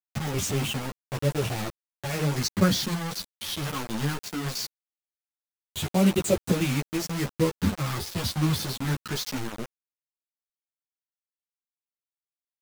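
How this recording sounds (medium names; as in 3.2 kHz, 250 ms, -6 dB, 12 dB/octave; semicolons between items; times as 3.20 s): phasing stages 6, 0.21 Hz, lowest notch 550–1500 Hz; a quantiser's noise floor 6-bit, dither none; a shimmering, thickened sound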